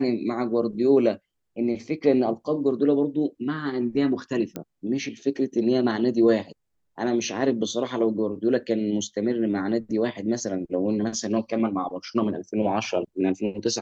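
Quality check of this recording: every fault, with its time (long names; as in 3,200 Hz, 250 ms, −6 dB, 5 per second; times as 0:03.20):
0:04.56: click −18 dBFS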